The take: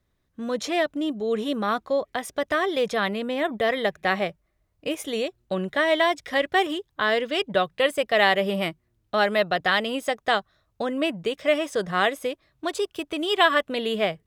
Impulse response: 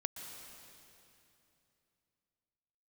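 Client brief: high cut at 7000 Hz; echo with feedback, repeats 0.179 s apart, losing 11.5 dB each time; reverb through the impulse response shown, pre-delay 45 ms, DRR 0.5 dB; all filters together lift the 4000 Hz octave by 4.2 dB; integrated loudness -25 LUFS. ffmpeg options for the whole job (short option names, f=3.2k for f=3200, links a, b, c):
-filter_complex "[0:a]lowpass=7k,equalizer=f=4k:t=o:g=6,aecho=1:1:179|358|537:0.266|0.0718|0.0194,asplit=2[a][b];[1:a]atrim=start_sample=2205,adelay=45[c];[b][c]afir=irnorm=-1:irlink=0,volume=-0.5dB[d];[a][d]amix=inputs=2:normalize=0,volume=-4dB"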